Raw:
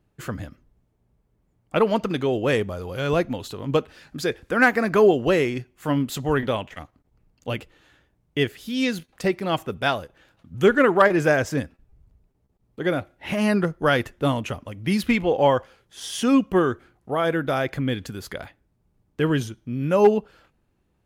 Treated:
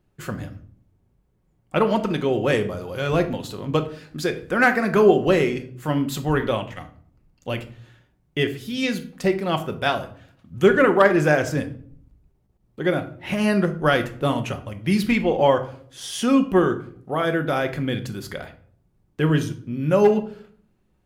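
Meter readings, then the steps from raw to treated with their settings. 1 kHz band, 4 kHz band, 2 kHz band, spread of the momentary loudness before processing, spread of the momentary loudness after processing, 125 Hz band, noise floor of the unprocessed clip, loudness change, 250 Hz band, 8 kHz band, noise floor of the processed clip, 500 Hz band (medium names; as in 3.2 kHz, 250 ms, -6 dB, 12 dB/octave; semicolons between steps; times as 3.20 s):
+0.5 dB, +0.5 dB, +0.5 dB, 16 LU, 16 LU, +2.5 dB, -69 dBFS, +1.0 dB, +1.5 dB, +0.5 dB, -66 dBFS, +1.0 dB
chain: simulated room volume 650 m³, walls furnished, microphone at 1 m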